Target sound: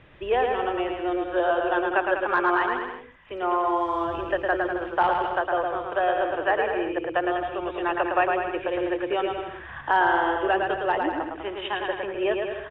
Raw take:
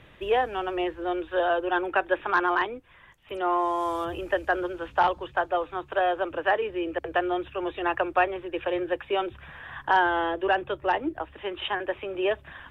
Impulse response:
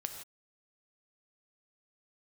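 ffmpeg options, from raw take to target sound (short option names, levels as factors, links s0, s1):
-filter_complex "[0:a]lowpass=3100,asplit=2[s0][s1];[s1]aecho=0:1:110|198|268.4|324.7|369.8:0.631|0.398|0.251|0.158|0.1[s2];[s0][s2]amix=inputs=2:normalize=0"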